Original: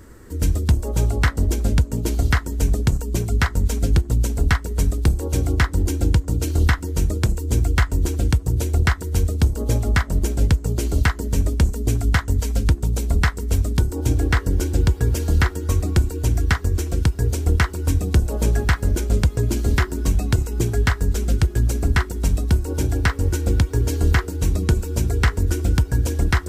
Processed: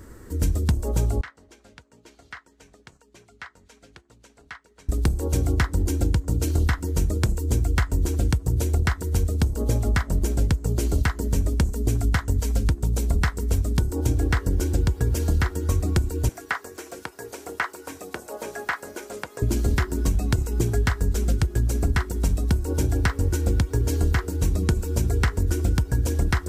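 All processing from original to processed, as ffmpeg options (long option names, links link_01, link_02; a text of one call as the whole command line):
ffmpeg -i in.wav -filter_complex "[0:a]asettb=1/sr,asplit=3[link_01][link_02][link_03];[link_01]atrim=end=1.214[link_04];[link_02]atrim=start=1.21:end=4.89,asetpts=PTS-STARTPTS,afade=type=in:duration=0.004:curve=qsin,afade=type=out:start_time=3.676:duration=0.004:curve=qsin,lowpass=2100,aderivative[link_05];[link_03]atrim=start=4.886[link_06];[link_04][link_05]acrossfade=duration=0.004:curve1=hsin:curve2=qsin[link_07];[link_07][link_06]acrossfade=duration=0.004:curve1=qsin:curve2=hsin,asettb=1/sr,asplit=3[link_08][link_09][link_10];[link_08]atrim=end=16.294[link_11];[link_09]atrim=start=16.29:end=19.42,asetpts=PTS-STARTPTS,afade=type=in:duration=0.004:curve=qsin,afade=type=out:start_time=3.126:duration=0.004:curve=qsin,highpass=600,equalizer=frequency=3400:width=1.7:gain=-3,acrossover=split=3500[link_12][link_13];[link_13]acompressor=threshold=-40dB:ratio=4:attack=1:release=60[link_14];[link_12][link_14]amix=inputs=2:normalize=0[link_15];[link_10]atrim=start=19.416[link_16];[link_11][link_15]acrossfade=duration=0.004:curve1=hsin:curve2=qsin[link_17];[link_17][link_16]acrossfade=duration=0.004:curve1=qsin:curve2=hsin,equalizer=frequency=2900:width_type=o:width=1.4:gain=-2.5,acompressor=threshold=-17dB:ratio=6" out.wav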